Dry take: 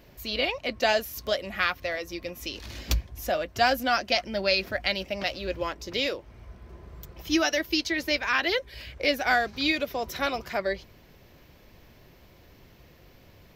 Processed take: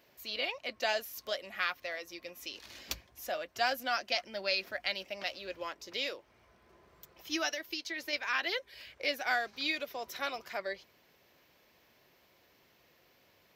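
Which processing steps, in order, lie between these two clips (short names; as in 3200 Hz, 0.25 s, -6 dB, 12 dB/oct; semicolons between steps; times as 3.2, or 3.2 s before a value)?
HPF 630 Hz 6 dB/oct; 7.51–8.13 compressor, threshold -28 dBFS, peak gain reduction 6 dB; gain -6.5 dB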